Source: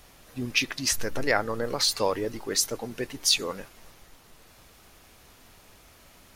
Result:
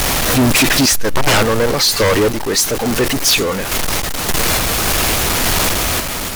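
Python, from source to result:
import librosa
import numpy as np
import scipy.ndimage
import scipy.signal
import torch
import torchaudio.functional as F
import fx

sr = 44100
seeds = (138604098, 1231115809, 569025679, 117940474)

y = x + 0.5 * 10.0 ** (-26.5 / 20.0) * np.sign(x)
y = fx.tremolo_random(y, sr, seeds[0], hz=3.5, depth_pct=70)
y = fx.fold_sine(y, sr, drive_db=16, ceiling_db=-7.5)
y = y * librosa.db_to_amplitude(-1.5)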